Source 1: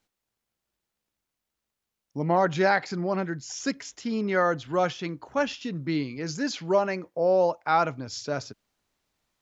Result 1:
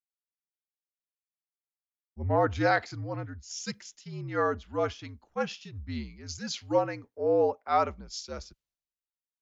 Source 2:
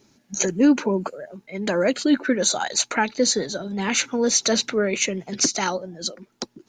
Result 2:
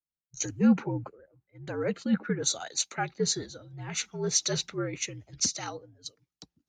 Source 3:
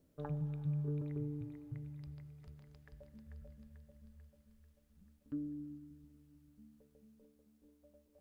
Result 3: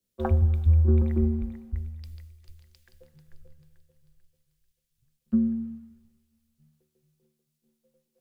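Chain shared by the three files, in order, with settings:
frequency shift -67 Hz; three bands expanded up and down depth 100%; peak normalisation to -12 dBFS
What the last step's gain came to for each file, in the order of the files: -5.5 dB, -10.5 dB, +10.0 dB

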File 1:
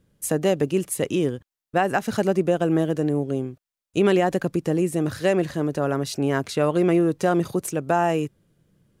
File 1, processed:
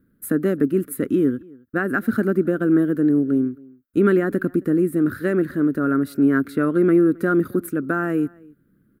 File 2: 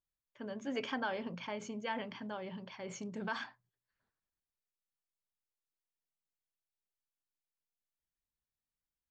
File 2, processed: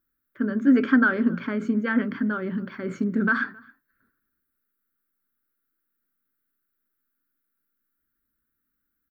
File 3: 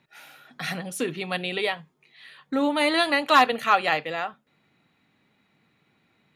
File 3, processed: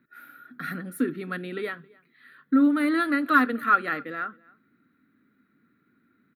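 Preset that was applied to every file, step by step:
FFT filter 160 Hz 0 dB, 260 Hz +13 dB, 870 Hz -15 dB, 1.4 kHz +11 dB, 2.8 kHz -13 dB, 4.1 kHz -9 dB, 6.2 kHz -19 dB, 14 kHz +8 dB; echo from a far wall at 46 m, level -25 dB; peak normalisation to -6 dBFS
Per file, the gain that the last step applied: -2.0 dB, +11.5 dB, -5.0 dB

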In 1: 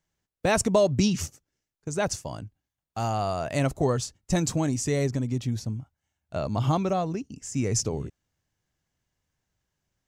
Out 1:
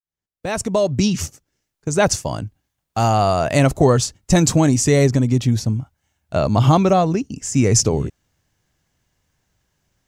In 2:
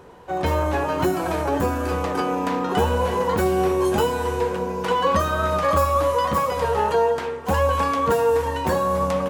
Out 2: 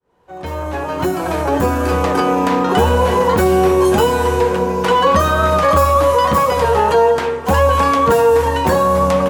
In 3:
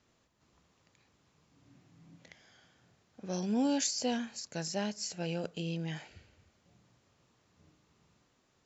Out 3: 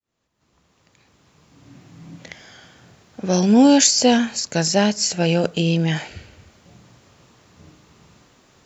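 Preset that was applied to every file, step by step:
fade-in on the opening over 2.09 s; in parallel at +1 dB: peak limiter -15 dBFS; on the sum: peak normalisation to -2 dBFS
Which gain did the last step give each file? +4.5 dB, +2.0 dB, +11.0 dB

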